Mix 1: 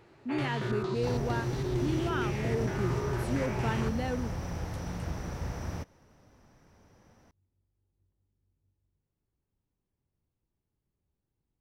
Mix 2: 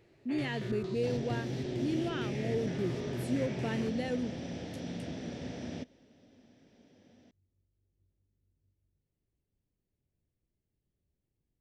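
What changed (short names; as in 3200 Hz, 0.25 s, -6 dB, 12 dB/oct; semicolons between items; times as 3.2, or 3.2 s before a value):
first sound -5.0 dB; second sound: add speaker cabinet 180–6900 Hz, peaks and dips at 250 Hz +9 dB, 1100 Hz -7 dB, 2000 Hz -3 dB, 3400 Hz +7 dB, 6000 Hz -5 dB; master: add band shelf 1100 Hz -9 dB 1.1 oct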